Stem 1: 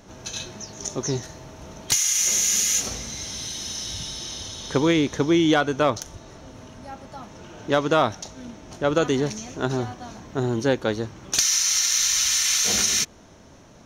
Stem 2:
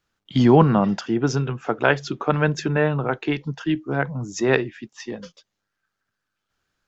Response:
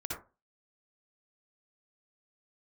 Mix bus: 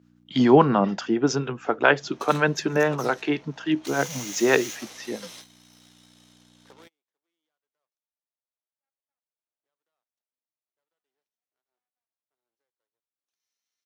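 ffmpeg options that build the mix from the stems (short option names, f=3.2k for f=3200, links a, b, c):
-filter_complex "[0:a]acrossover=split=420 5600:gain=0.0631 1 0.0631[a][b][c];[a][b][c]amix=inputs=3:normalize=0,alimiter=limit=-20dB:level=0:latency=1:release=203,aeval=exprs='0.1*(cos(1*acos(clip(val(0)/0.1,-1,1)))-cos(1*PI/2))+0.0355*(cos(2*acos(clip(val(0)/0.1,-1,1)))-cos(2*PI/2))+0.00562*(cos(5*acos(clip(val(0)/0.1,-1,1)))-cos(5*PI/2))+0.00708*(cos(7*acos(clip(val(0)/0.1,-1,1)))-cos(7*PI/2))+0.02*(cos(8*acos(clip(val(0)/0.1,-1,1)))-cos(8*PI/2))':c=same,adelay=1950,volume=-7dB[d];[1:a]acrossover=split=650[e][f];[e]aeval=exprs='val(0)*(1-0.5/2+0.5/2*cos(2*PI*7.2*n/s))':c=same[g];[f]aeval=exprs='val(0)*(1-0.5/2-0.5/2*cos(2*PI*7.2*n/s))':c=same[h];[g][h]amix=inputs=2:normalize=0,aeval=exprs='val(0)+0.00316*(sin(2*PI*60*n/s)+sin(2*PI*2*60*n/s)/2+sin(2*PI*3*60*n/s)/3+sin(2*PI*4*60*n/s)/4+sin(2*PI*5*60*n/s)/5)':c=same,volume=2.5dB,asplit=2[i][j];[j]apad=whole_len=697016[k];[d][k]sidechaingate=range=-51dB:threshold=-46dB:ratio=16:detection=peak[l];[l][i]amix=inputs=2:normalize=0,highpass=220"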